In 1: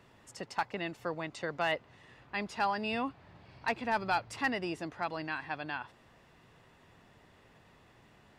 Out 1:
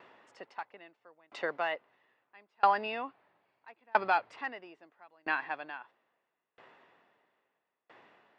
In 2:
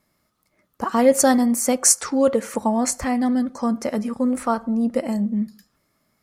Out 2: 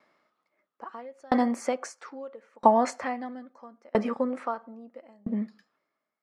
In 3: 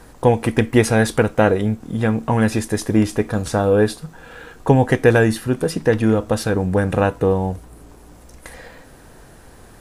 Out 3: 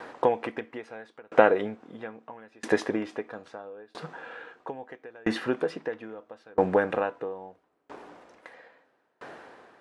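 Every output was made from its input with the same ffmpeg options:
ffmpeg -i in.wav -af "acompressor=threshold=-17dB:ratio=6,highpass=410,lowpass=2700,aeval=exprs='val(0)*pow(10,-35*if(lt(mod(0.76*n/s,1),2*abs(0.76)/1000),1-mod(0.76*n/s,1)/(2*abs(0.76)/1000),(mod(0.76*n/s,1)-2*abs(0.76)/1000)/(1-2*abs(0.76)/1000))/20)':channel_layout=same,volume=8.5dB" out.wav

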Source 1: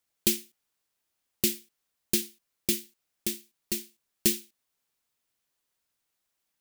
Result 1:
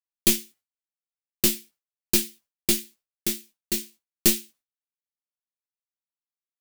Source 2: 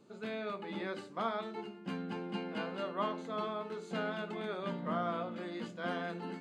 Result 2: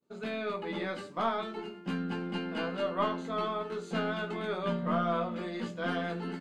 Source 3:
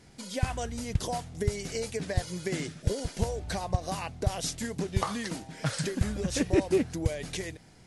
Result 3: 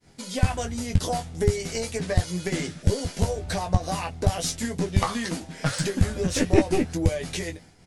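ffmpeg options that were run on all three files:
ffmpeg -i in.wav -af "aeval=exprs='0.447*(cos(1*acos(clip(val(0)/0.447,-1,1)))-cos(1*PI/2))+0.0708*(cos(4*acos(clip(val(0)/0.447,-1,1)))-cos(4*PI/2))':channel_layout=same,agate=range=-33dB:threshold=-50dB:ratio=3:detection=peak,aecho=1:1:12|22:0.501|0.376,volume=3.5dB" out.wav

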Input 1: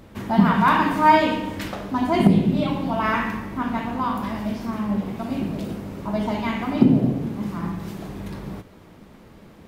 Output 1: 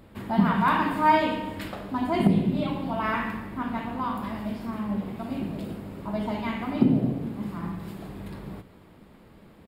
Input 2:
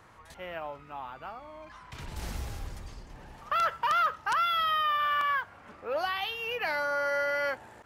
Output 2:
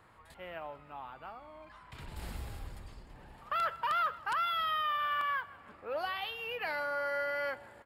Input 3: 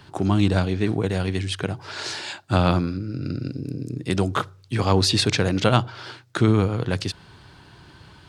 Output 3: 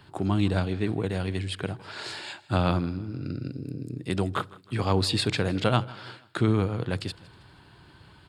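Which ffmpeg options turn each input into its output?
ffmpeg -i in.wav -filter_complex "[0:a]equalizer=frequency=6000:width=5.3:gain=-14,asplit=2[link_01][link_02];[link_02]aecho=0:1:159|318|477:0.0891|0.0401|0.018[link_03];[link_01][link_03]amix=inputs=2:normalize=0,volume=-5dB" out.wav

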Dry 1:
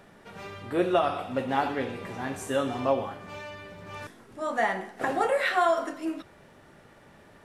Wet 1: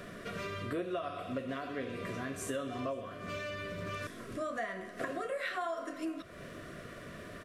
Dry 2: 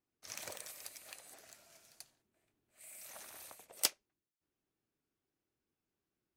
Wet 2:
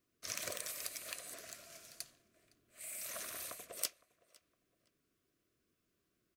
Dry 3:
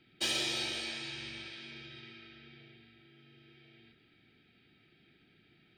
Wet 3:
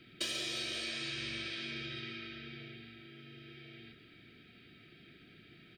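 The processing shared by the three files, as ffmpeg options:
ffmpeg -i in.wav -filter_complex "[0:a]acompressor=threshold=-44dB:ratio=5,asuperstop=centerf=850:order=12:qfactor=3.6,asplit=2[link_01][link_02];[link_02]adelay=511,lowpass=frequency=4000:poles=1,volume=-22dB,asplit=2[link_03][link_04];[link_04]adelay=511,lowpass=frequency=4000:poles=1,volume=0.3[link_05];[link_03][link_05]amix=inputs=2:normalize=0[link_06];[link_01][link_06]amix=inputs=2:normalize=0,volume=7.5dB" out.wav

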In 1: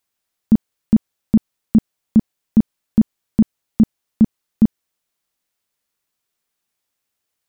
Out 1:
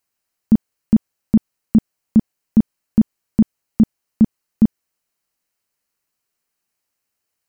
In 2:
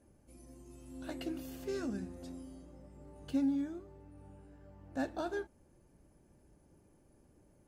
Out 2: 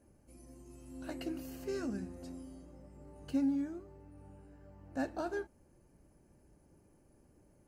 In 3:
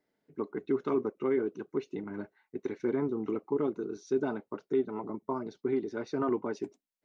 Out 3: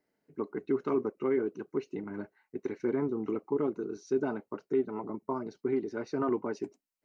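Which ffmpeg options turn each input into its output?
ffmpeg -i in.wav -af "bandreject=frequency=3500:width=5.5" out.wav

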